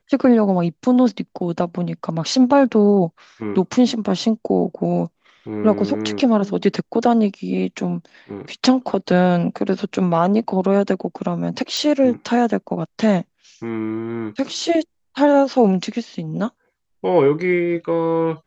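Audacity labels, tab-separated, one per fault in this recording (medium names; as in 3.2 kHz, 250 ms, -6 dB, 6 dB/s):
11.770000	11.770000	pop -11 dBFS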